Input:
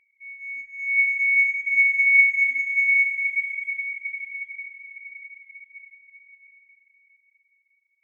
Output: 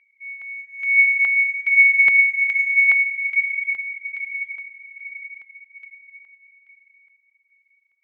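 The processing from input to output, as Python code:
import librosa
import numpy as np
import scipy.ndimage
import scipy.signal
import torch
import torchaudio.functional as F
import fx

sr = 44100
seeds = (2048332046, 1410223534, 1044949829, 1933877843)

y = fx.filter_lfo_bandpass(x, sr, shape='square', hz=1.2, low_hz=1000.0, high_hz=2000.0, q=0.82)
y = F.gain(torch.from_numpy(y), 5.5).numpy()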